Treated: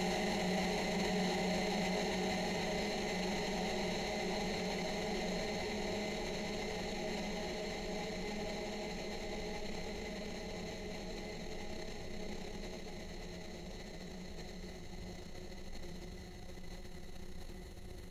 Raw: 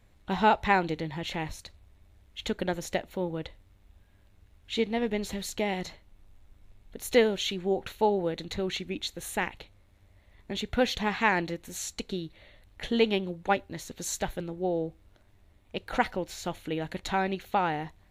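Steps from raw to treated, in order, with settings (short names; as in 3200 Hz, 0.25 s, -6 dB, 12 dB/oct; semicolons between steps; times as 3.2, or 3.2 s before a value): reverse delay 0.207 s, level -11 dB; reverse; compressor, threshold -36 dBFS, peak gain reduction 18.5 dB; reverse; pre-echo 0.299 s -12 dB; Paulstretch 30×, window 1.00 s, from 5.86; transient shaper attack -6 dB, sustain +7 dB; gain +4.5 dB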